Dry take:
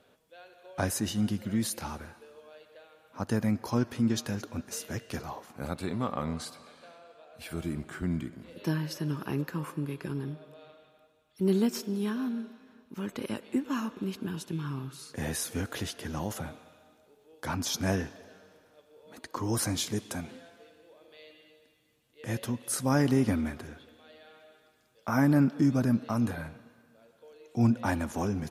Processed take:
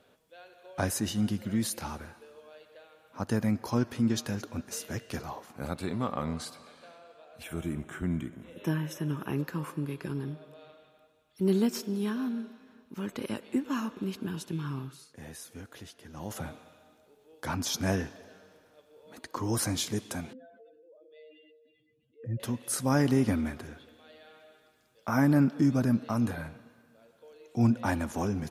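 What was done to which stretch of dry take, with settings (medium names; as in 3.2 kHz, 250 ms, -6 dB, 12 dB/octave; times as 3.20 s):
7.43–9.36 s: Butterworth band-stop 4.6 kHz, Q 2.5
14.80–16.42 s: dip -12 dB, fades 0.29 s
20.33–22.40 s: spectral contrast enhancement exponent 2.4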